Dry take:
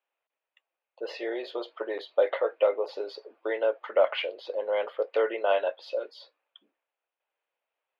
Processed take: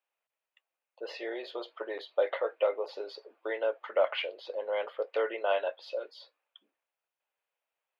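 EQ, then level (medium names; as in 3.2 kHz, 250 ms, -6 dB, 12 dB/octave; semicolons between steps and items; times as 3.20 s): bass shelf 480 Hz -5.5 dB; -2.0 dB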